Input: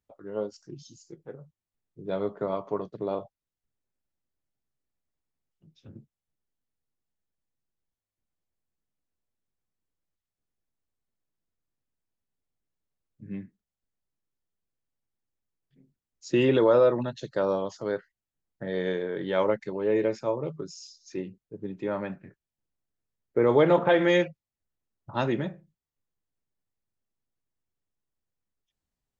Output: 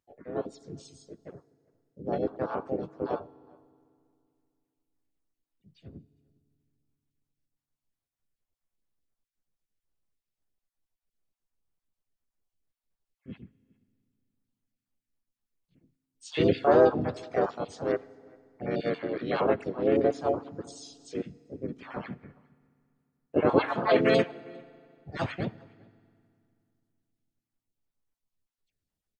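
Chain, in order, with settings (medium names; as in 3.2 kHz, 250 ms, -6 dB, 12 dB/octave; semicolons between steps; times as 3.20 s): random holes in the spectrogram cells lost 37%; echo from a far wall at 69 m, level -27 dB; harmony voices -7 st -7 dB, -4 st -4 dB, +4 st -2 dB; on a send at -20.5 dB: reverberation RT60 2.4 s, pre-delay 4 ms; on the sum: trim -3 dB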